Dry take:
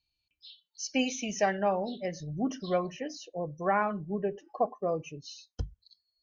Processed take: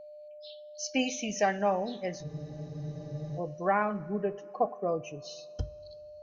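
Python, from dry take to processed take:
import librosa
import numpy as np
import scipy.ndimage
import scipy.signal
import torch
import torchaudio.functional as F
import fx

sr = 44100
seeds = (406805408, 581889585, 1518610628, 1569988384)

y = fx.rev_double_slope(x, sr, seeds[0], early_s=0.22, late_s=2.8, knee_db=-18, drr_db=13.0)
y = y + 10.0 ** (-45.0 / 20.0) * np.sin(2.0 * np.pi * 600.0 * np.arange(len(y)) / sr)
y = fx.spec_freeze(y, sr, seeds[1], at_s=2.26, hold_s=1.12)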